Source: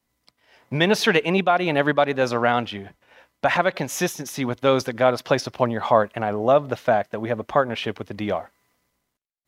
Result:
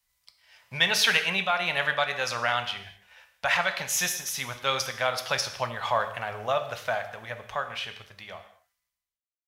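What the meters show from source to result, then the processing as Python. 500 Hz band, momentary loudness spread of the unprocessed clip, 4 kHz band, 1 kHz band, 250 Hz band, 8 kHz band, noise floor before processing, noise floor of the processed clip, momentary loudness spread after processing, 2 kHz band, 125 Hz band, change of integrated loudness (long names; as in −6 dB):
−12.0 dB, 9 LU, +2.0 dB, −6.5 dB, −18.5 dB, +3.5 dB, −76 dBFS, below −85 dBFS, 14 LU, −1.0 dB, −12.0 dB, −5.0 dB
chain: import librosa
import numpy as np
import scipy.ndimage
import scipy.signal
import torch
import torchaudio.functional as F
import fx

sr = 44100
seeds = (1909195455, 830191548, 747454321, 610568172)

y = fx.fade_out_tail(x, sr, length_s=2.89)
y = fx.tone_stack(y, sr, knobs='10-0-10')
y = fx.rev_gated(y, sr, seeds[0], gate_ms=270, shape='falling', drr_db=6.5)
y = y * librosa.db_to_amplitude(3.5)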